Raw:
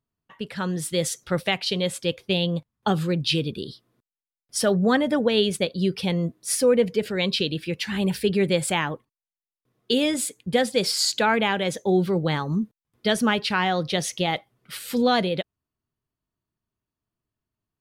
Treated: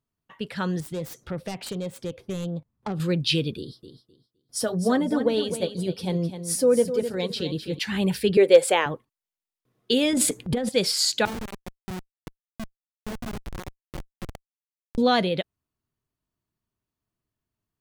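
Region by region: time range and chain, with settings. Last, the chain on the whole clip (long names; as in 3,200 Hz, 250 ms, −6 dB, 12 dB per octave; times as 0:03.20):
0:00.80–0:03.00: phase distortion by the signal itself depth 0.16 ms + tilt shelving filter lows +6.5 dB, about 1,200 Hz + downward compressor 2.5 to 1, threshold −33 dBFS
0:03.57–0:07.79: parametric band 2,400 Hz −10 dB 1.4 octaves + notch comb filter 200 Hz + repeating echo 257 ms, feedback 21%, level −10 dB
0:08.37–0:08.86: high-pass with resonance 470 Hz, resonance Q 4.7 + hard clipping −5 dBFS
0:10.13–0:10.69: tilt shelving filter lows +6.5 dB, about 900 Hz + compressor whose output falls as the input rises −24 dBFS + transient designer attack −9 dB, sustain +11 dB
0:11.25–0:14.98: one scale factor per block 7 bits + tuned comb filter 110 Hz, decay 0.28 s, mix 80% + comparator with hysteresis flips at −25 dBFS
whole clip: no processing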